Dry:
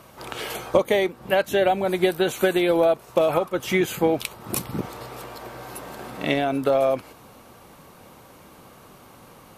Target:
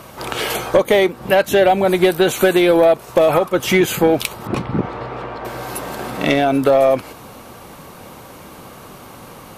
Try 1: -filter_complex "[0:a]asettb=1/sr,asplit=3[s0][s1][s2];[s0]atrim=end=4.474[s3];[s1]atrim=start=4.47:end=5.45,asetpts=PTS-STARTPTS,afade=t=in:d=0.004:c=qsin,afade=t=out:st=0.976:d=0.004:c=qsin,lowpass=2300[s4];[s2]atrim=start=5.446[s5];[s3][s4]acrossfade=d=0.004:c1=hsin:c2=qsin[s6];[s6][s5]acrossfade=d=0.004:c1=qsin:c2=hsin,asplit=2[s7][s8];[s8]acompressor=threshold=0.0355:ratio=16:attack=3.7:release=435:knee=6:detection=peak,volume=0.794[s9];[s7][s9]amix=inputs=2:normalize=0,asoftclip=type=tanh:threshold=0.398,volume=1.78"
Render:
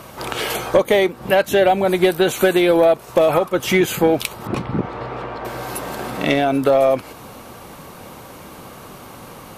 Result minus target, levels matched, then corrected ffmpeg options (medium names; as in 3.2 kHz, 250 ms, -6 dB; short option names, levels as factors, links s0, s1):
compression: peak gain reduction +10 dB
-filter_complex "[0:a]asettb=1/sr,asplit=3[s0][s1][s2];[s0]atrim=end=4.474[s3];[s1]atrim=start=4.47:end=5.45,asetpts=PTS-STARTPTS,afade=t=in:d=0.004:c=qsin,afade=t=out:st=0.976:d=0.004:c=qsin,lowpass=2300[s4];[s2]atrim=start=5.446[s5];[s3][s4]acrossfade=d=0.004:c1=hsin:c2=qsin[s6];[s6][s5]acrossfade=d=0.004:c1=qsin:c2=hsin,asplit=2[s7][s8];[s8]acompressor=threshold=0.119:ratio=16:attack=3.7:release=435:knee=6:detection=peak,volume=0.794[s9];[s7][s9]amix=inputs=2:normalize=0,asoftclip=type=tanh:threshold=0.398,volume=1.78"